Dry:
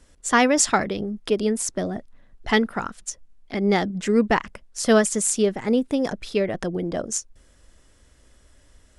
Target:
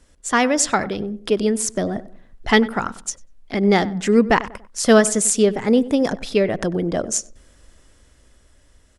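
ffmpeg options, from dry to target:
-filter_complex "[0:a]dynaudnorm=f=100:g=21:m=7.5dB,asplit=2[a][b];[b]adelay=96,lowpass=f=1.6k:p=1,volume=-16.5dB,asplit=2[c][d];[d]adelay=96,lowpass=f=1.6k:p=1,volume=0.38,asplit=2[e][f];[f]adelay=96,lowpass=f=1.6k:p=1,volume=0.38[g];[c][e][g]amix=inputs=3:normalize=0[h];[a][h]amix=inputs=2:normalize=0"

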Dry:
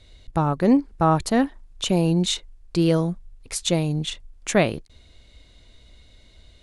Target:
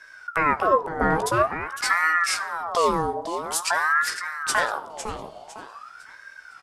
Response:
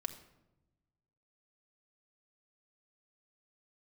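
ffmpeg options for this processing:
-filter_complex "[0:a]equalizer=f=2.7k:t=o:w=2.1:g=-5.5,alimiter=limit=-16.5dB:level=0:latency=1:release=280,aecho=1:1:505|1010|1515|2020:0.316|0.104|0.0344|0.0114,asplit=2[a][b];[1:a]atrim=start_sample=2205,adelay=15[c];[b][c]afir=irnorm=-1:irlink=0,volume=-6.5dB[d];[a][d]amix=inputs=2:normalize=0,aeval=exprs='val(0)*sin(2*PI*1100*n/s+1100*0.45/0.48*sin(2*PI*0.48*n/s))':c=same,volume=6.5dB"

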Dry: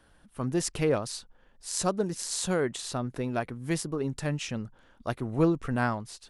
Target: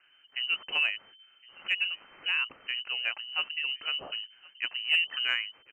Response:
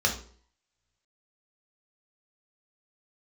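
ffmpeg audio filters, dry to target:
-filter_complex "[0:a]lowpass=f=2.6k:t=q:w=0.5098,lowpass=f=2.6k:t=q:w=0.6013,lowpass=f=2.6k:t=q:w=0.9,lowpass=f=2.6k:t=q:w=2.563,afreqshift=-3100,lowshelf=f=89:g=-7,asplit=2[a][b];[b]aecho=0:1:1167:0.0631[c];[a][c]amix=inputs=2:normalize=0,acontrast=72,aemphasis=mode=reproduction:type=cd,atempo=1.1,volume=-7dB"

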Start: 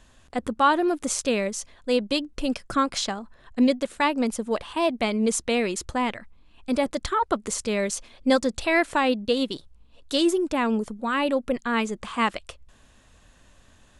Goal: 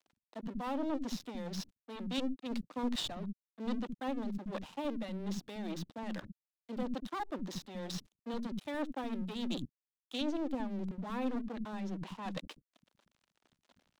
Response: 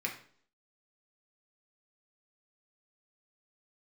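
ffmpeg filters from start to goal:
-filter_complex "[0:a]bass=f=250:g=10,treble=f=4k:g=-4,areverse,acompressor=threshold=-33dB:ratio=12,areverse,aeval=exprs='(tanh(44.7*val(0)+0.25)-tanh(0.25))/44.7':c=same,asetrate=39289,aresample=44100,atempo=1.12246,highpass=f=160:w=0.5412,highpass=f=160:w=1.3066,equalizer=f=260:t=q:w=4:g=6,equalizer=f=430:t=q:w=4:g=-7,equalizer=f=1.4k:t=q:w=4:g=-5,equalizer=f=2.2k:t=q:w=4:g=-7,equalizer=f=3.7k:t=q:w=4:g=6,lowpass=f=5.3k:w=0.5412,lowpass=f=5.3k:w=1.3066,aeval=exprs='sgn(val(0))*max(abs(val(0))-0.00211,0)':c=same,aeval=exprs='0.0501*(cos(1*acos(clip(val(0)/0.0501,-1,1)))-cos(1*PI/2))+0.00891*(cos(4*acos(clip(val(0)/0.0501,-1,1)))-cos(4*PI/2))':c=same,acrossover=split=250[a][b];[a]adelay=70[c];[c][b]amix=inputs=2:normalize=0,volume=3.5dB"

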